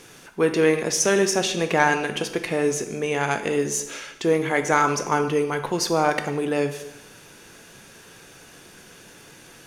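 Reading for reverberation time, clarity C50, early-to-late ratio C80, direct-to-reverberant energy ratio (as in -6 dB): 0.90 s, 10.0 dB, 12.5 dB, 7.0 dB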